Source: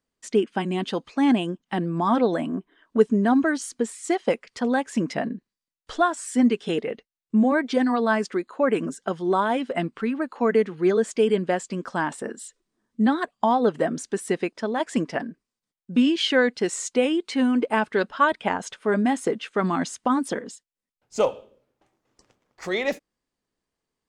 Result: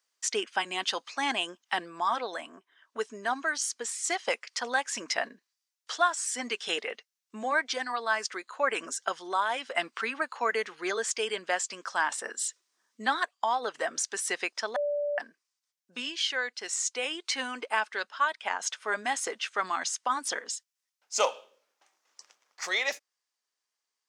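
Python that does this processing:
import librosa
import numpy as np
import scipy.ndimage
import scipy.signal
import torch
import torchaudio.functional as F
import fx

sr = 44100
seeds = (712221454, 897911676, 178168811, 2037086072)

y = fx.edit(x, sr, fx.bleep(start_s=14.76, length_s=0.42, hz=583.0, db=-18.0), tone=tone)
y = scipy.signal.sosfilt(scipy.signal.butter(2, 1000.0, 'highpass', fs=sr, output='sos'), y)
y = fx.peak_eq(y, sr, hz=5800.0, db=7.5, octaves=0.74)
y = fx.rider(y, sr, range_db=10, speed_s=0.5)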